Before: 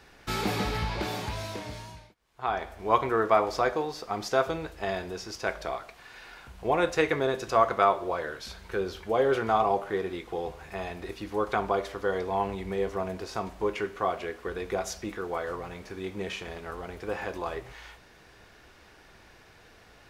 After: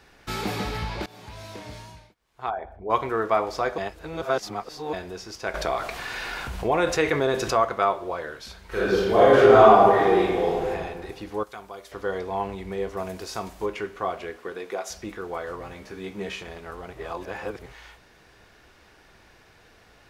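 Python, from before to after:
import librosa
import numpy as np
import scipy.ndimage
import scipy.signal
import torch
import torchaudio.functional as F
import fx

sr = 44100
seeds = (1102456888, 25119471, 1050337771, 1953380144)

y = fx.envelope_sharpen(x, sr, power=2.0, at=(2.49, 2.89), fade=0.02)
y = fx.env_flatten(y, sr, amount_pct=50, at=(5.54, 7.65))
y = fx.reverb_throw(y, sr, start_s=8.66, length_s=2.04, rt60_s=1.5, drr_db=-10.5)
y = fx.pre_emphasis(y, sr, coefficient=0.8, at=(11.43, 11.92))
y = fx.high_shelf(y, sr, hz=4600.0, db=11.0, at=(12.97, 13.66))
y = fx.highpass(y, sr, hz=fx.line((14.38, 130.0), (14.89, 450.0)), slope=12, at=(14.38, 14.89), fade=0.02)
y = fx.doubler(y, sr, ms=15.0, db=-5, at=(15.59, 16.43))
y = fx.edit(y, sr, fx.fade_in_from(start_s=1.06, length_s=0.69, floor_db=-21.0),
    fx.reverse_span(start_s=3.78, length_s=1.15),
    fx.reverse_span(start_s=16.93, length_s=0.73), tone=tone)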